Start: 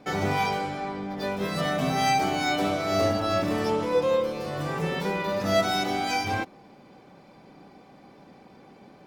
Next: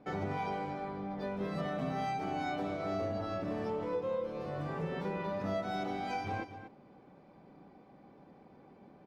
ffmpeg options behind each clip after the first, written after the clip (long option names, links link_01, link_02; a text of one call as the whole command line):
ffmpeg -i in.wav -filter_complex "[0:a]lowpass=frequency=1200:poles=1,acompressor=threshold=-26dB:ratio=6,asplit=2[link_01][link_02];[link_02]aecho=0:1:238:0.266[link_03];[link_01][link_03]amix=inputs=2:normalize=0,volume=-6dB" out.wav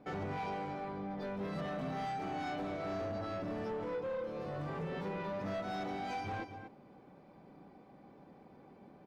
ffmpeg -i in.wav -af "asoftclip=type=tanh:threshold=-33.5dB" out.wav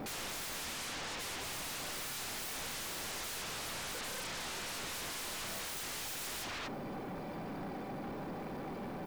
ffmpeg -i in.wav -af "crystalizer=i=1.5:c=0,aeval=exprs='0.0224*sin(PI/2*10*val(0)/0.0224)':channel_layout=same,aeval=exprs='0.0237*(cos(1*acos(clip(val(0)/0.0237,-1,1)))-cos(1*PI/2))+0.00237*(cos(2*acos(clip(val(0)/0.0237,-1,1)))-cos(2*PI/2))':channel_layout=same,volume=-5.5dB" out.wav